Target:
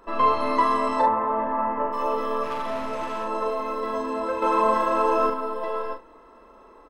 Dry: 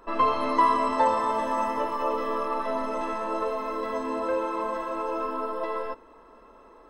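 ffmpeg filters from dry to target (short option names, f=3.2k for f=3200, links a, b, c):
-filter_complex "[0:a]asplit=3[a][b][c];[a]afade=t=out:st=1.01:d=0.02[d];[b]lowpass=f=2k:w=0.5412,lowpass=f=2k:w=1.3066,afade=t=in:st=1.01:d=0.02,afade=t=out:st=1.92:d=0.02[e];[c]afade=t=in:st=1.92:d=0.02[f];[d][e][f]amix=inputs=3:normalize=0,asettb=1/sr,asplit=3[g][h][i];[g]atrim=end=2.434[j];[h]atrim=start=2.43:end=3.24,asetpts=PTS-STARTPTS,afade=t=in:d=0.004:c=qsin,afade=t=out:st=0.806:d=0.004:c=qsin,volume=27.5dB,asoftclip=hard,volume=-27.5dB[k];[i]atrim=start=3.236[l];[j][k]acrossfade=d=0.004:c1=hsin:c2=qsin[m];[m][l]acrossfade=d=0.004:c1=qsin:c2=hsin,asettb=1/sr,asplit=3[n][o][p];[n]atrim=end=4.424[q];[o]atrim=start=4.42:end=5.3,asetpts=PTS-STARTPTS,afade=t=in:d=0.004:c=qsin,afade=t=out:st=0.876:d=0.004:c=qsin,acontrast=88[r];[p]atrim=start=5.296[s];[q][r]acrossfade=d=0.004:c1=hsin:c2=qsin[t];[t][s]acrossfade=d=0.004:c1=qsin:c2=hsin,aecho=1:1:41|69:0.596|0.188"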